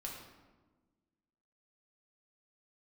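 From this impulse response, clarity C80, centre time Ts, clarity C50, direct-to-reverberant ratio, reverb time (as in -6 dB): 5.0 dB, 51 ms, 3.0 dB, -2.5 dB, 1.3 s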